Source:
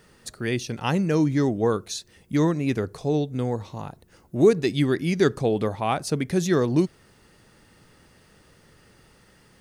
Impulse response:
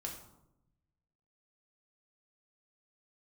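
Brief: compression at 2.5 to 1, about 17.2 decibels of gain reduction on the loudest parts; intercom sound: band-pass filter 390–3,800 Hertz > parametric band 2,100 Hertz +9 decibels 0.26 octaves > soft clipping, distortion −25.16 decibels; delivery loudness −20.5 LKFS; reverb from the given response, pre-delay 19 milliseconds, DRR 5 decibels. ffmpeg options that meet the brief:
-filter_complex "[0:a]acompressor=threshold=-39dB:ratio=2.5,asplit=2[link_01][link_02];[1:a]atrim=start_sample=2205,adelay=19[link_03];[link_02][link_03]afir=irnorm=-1:irlink=0,volume=-3.5dB[link_04];[link_01][link_04]amix=inputs=2:normalize=0,highpass=390,lowpass=3800,equalizer=frequency=2100:width_type=o:width=0.26:gain=9,asoftclip=threshold=-24dB,volume=20dB"

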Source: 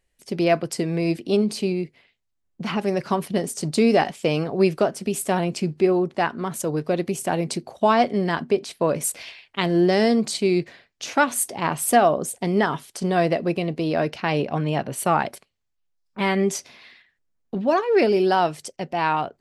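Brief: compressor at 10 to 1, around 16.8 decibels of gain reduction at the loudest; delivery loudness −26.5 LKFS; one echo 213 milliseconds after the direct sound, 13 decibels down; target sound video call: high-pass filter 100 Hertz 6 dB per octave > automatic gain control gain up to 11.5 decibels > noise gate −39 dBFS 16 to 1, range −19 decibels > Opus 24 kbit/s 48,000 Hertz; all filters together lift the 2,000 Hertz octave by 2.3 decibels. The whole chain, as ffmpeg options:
ffmpeg -i in.wav -af "equalizer=frequency=2000:width_type=o:gain=3,acompressor=threshold=-30dB:ratio=10,highpass=frequency=100:poles=1,aecho=1:1:213:0.224,dynaudnorm=maxgain=11.5dB,agate=range=-19dB:threshold=-39dB:ratio=16,volume=3.5dB" -ar 48000 -c:a libopus -b:a 24k out.opus

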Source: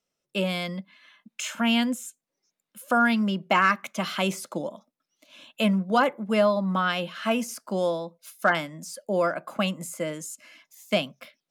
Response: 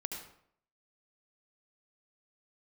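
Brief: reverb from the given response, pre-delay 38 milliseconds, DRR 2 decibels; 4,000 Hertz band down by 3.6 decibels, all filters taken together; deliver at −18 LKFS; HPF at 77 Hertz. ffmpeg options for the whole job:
-filter_complex "[0:a]highpass=77,equalizer=frequency=4000:width_type=o:gain=-5.5,asplit=2[link_01][link_02];[1:a]atrim=start_sample=2205,adelay=38[link_03];[link_02][link_03]afir=irnorm=-1:irlink=0,volume=-2.5dB[link_04];[link_01][link_04]amix=inputs=2:normalize=0,volume=6.5dB"

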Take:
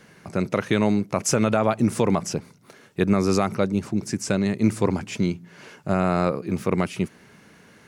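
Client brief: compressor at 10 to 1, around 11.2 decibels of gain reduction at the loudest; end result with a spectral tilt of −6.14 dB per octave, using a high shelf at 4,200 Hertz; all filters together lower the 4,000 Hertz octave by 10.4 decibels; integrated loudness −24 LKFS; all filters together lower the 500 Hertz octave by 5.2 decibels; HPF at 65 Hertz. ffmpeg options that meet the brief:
ffmpeg -i in.wav -af "highpass=65,equalizer=frequency=500:width_type=o:gain=-6.5,equalizer=frequency=4000:width_type=o:gain=-8,highshelf=frequency=4200:gain=-9,acompressor=threshold=-27dB:ratio=10,volume=10dB" out.wav

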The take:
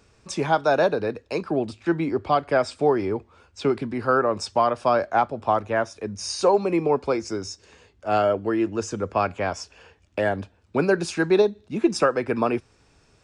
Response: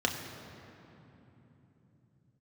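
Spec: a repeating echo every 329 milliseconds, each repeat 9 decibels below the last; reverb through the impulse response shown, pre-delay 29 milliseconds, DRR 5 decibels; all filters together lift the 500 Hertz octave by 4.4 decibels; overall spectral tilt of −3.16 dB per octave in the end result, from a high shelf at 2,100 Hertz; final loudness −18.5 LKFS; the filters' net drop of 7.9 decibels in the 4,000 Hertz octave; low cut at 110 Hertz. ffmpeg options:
-filter_complex "[0:a]highpass=110,equalizer=frequency=500:width_type=o:gain=6,highshelf=frequency=2100:gain=-4,equalizer=frequency=4000:width_type=o:gain=-6.5,aecho=1:1:329|658|987|1316:0.355|0.124|0.0435|0.0152,asplit=2[link_01][link_02];[1:a]atrim=start_sample=2205,adelay=29[link_03];[link_02][link_03]afir=irnorm=-1:irlink=0,volume=-14dB[link_04];[link_01][link_04]amix=inputs=2:normalize=0,volume=0.5dB"

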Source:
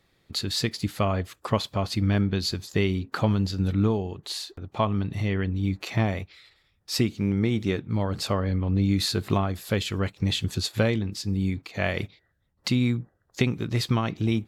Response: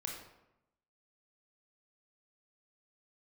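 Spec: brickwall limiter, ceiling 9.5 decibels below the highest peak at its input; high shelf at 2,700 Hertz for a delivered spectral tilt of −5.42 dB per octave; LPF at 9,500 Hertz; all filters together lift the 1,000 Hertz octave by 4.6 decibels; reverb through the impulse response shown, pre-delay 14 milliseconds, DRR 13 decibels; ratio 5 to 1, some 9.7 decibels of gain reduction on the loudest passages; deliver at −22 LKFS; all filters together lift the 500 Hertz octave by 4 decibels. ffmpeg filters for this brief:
-filter_complex "[0:a]lowpass=9500,equalizer=frequency=500:width_type=o:gain=4,equalizer=frequency=1000:width_type=o:gain=5,highshelf=frequency=2700:gain=-3.5,acompressor=threshold=-27dB:ratio=5,alimiter=limit=-23dB:level=0:latency=1,asplit=2[link_01][link_02];[1:a]atrim=start_sample=2205,adelay=14[link_03];[link_02][link_03]afir=irnorm=-1:irlink=0,volume=-13dB[link_04];[link_01][link_04]amix=inputs=2:normalize=0,volume=11.5dB"

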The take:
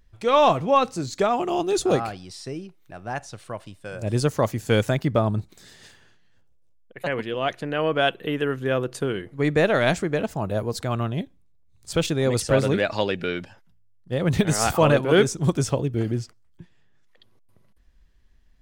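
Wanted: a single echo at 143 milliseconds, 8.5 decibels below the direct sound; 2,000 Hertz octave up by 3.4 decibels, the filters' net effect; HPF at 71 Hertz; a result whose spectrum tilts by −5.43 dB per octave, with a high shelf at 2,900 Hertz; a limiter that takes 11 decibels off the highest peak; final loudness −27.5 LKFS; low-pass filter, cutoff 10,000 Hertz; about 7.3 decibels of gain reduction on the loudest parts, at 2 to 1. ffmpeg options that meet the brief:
ffmpeg -i in.wav -af "highpass=71,lowpass=10000,equalizer=frequency=2000:width_type=o:gain=8,highshelf=frequency=2900:gain=-9,acompressor=threshold=-26dB:ratio=2,alimiter=limit=-22.5dB:level=0:latency=1,aecho=1:1:143:0.376,volume=5.5dB" out.wav

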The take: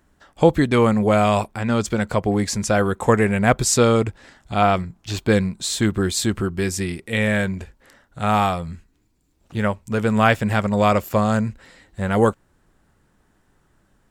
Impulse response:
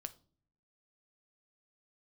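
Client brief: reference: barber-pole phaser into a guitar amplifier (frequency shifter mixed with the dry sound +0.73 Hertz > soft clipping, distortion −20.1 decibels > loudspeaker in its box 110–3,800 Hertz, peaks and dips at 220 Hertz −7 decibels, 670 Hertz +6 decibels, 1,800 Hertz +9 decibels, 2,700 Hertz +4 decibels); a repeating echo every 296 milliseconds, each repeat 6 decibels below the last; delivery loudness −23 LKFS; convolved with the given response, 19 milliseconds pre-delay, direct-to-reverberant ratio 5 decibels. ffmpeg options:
-filter_complex "[0:a]aecho=1:1:296|592|888|1184|1480|1776:0.501|0.251|0.125|0.0626|0.0313|0.0157,asplit=2[link_01][link_02];[1:a]atrim=start_sample=2205,adelay=19[link_03];[link_02][link_03]afir=irnorm=-1:irlink=0,volume=-1.5dB[link_04];[link_01][link_04]amix=inputs=2:normalize=0,asplit=2[link_05][link_06];[link_06]afreqshift=0.73[link_07];[link_05][link_07]amix=inputs=2:normalize=1,asoftclip=threshold=-9dB,highpass=110,equalizer=frequency=220:width_type=q:width=4:gain=-7,equalizer=frequency=670:width_type=q:width=4:gain=6,equalizer=frequency=1800:width_type=q:width=4:gain=9,equalizer=frequency=2700:width_type=q:width=4:gain=4,lowpass=frequency=3800:width=0.5412,lowpass=frequency=3800:width=1.3066,volume=-2dB"

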